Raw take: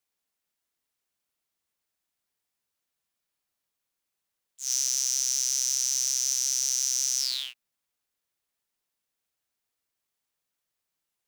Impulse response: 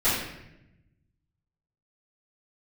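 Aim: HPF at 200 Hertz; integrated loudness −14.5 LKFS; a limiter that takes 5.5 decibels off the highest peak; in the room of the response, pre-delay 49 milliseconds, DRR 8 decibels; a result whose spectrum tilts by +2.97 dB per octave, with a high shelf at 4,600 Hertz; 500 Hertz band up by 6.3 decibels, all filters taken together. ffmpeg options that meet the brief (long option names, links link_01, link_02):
-filter_complex "[0:a]highpass=200,equalizer=frequency=500:width_type=o:gain=8,highshelf=frequency=4600:gain=-7,alimiter=limit=-20dB:level=0:latency=1,asplit=2[link_01][link_02];[1:a]atrim=start_sample=2205,adelay=49[link_03];[link_02][link_03]afir=irnorm=-1:irlink=0,volume=-22.5dB[link_04];[link_01][link_04]amix=inputs=2:normalize=0,volume=18dB"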